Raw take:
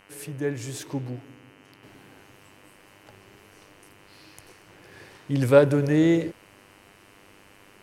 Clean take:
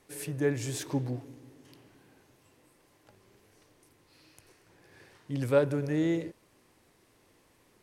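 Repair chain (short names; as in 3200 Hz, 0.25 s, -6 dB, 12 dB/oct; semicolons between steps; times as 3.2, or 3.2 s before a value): de-hum 99.4 Hz, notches 31; gain correction -8.5 dB, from 1.83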